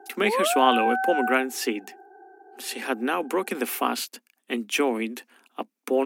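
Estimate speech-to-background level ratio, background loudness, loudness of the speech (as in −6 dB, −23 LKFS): 0.0 dB, −26.0 LKFS, −26.0 LKFS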